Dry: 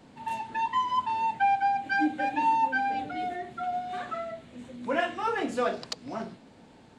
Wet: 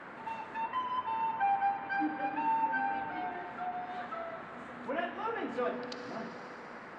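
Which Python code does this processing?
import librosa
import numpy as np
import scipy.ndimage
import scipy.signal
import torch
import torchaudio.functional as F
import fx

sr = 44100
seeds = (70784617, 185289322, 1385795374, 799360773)

y = fx.rev_fdn(x, sr, rt60_s=3.5, lf_ratio=1.0, hf_ratio=0.95, size_ms=36.0, drr_db=7.5)
y = fx.dmg_noise_band(y, sr, seeds[0], low_hz=190.0, high_hz=1800.0, level_db=-40.0)
y = fx.env_lowpass_down(y, sr, base_hz=3000.0, full_db=-25.5)
y = y * 10.0 ** (-7.5 / 20.0)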